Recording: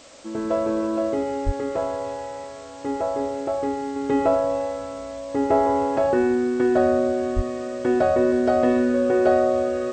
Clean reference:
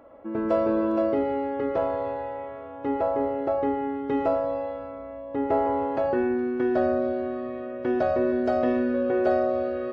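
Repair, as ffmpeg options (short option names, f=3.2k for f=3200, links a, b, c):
-filter_complex "[0:a]asplit=3[a][b][c];[a]afade=t=out:st=1.45:d=0.02[d];[b]highpass=f=140:w=0.5412,highpass=f=140:w=1.3066,afade=t=in:st=1.45:d=0.02,afade=t=out:st=1.57:d=0.02[e];[c]afade=t=in:st=1.57:d=0.02[f];[d][e][f]amix=inputs=3:normalize=0,asplit=3[g][h][i];[g]afade=t=out:st=7.35:d=0.02[j];[h]highpass=f=140:w=0.5412,highpass=f=140:w=1.3066,afade=t=in:st=7.35:d=0.02,afade=t=out:st=7.47:d=0.02[k];[i]afade=t=in:st=7.47:d=0.02[l];[j][k][l]amix=inputs=3:normalize=0,afwtdn=0.005,asetnsamples=n=441:p=0,asendcmd='3.96 volume volume -4.5dB',volume=0dB"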